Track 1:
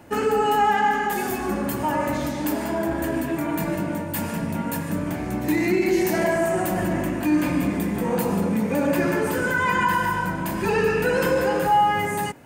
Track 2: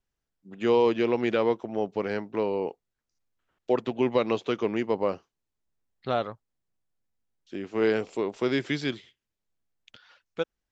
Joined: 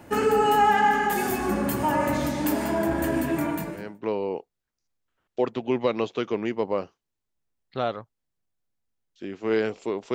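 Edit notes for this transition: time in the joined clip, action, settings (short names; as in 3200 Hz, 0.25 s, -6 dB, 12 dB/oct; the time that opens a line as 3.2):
track 1
3.75 switch to track 2 from 2.06 s, crossfade 0.62 s quadratic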